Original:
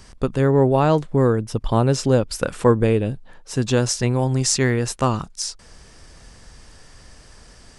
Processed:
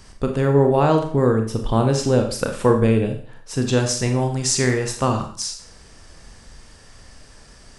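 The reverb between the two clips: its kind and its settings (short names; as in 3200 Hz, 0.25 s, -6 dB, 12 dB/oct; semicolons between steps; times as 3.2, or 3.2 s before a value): Schroeder reverb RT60 0.49 s, combs from 28 ms, DRR 4 dB; gain -1 dB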